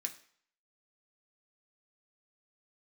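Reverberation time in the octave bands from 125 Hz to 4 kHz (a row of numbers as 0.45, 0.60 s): 0.50, 0.45, 0.50, 0.60, 0.55, 0.55 s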